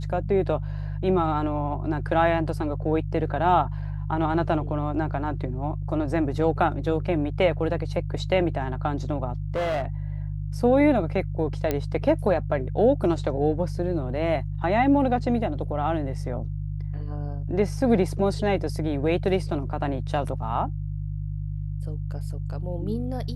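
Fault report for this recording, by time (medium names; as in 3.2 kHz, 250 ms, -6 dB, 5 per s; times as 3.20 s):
hum 50 Hz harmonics 3 -30 dBFS
9.54–9.86 s: clipped -22.5 dBFS
11.71 s: pop -11 dBFS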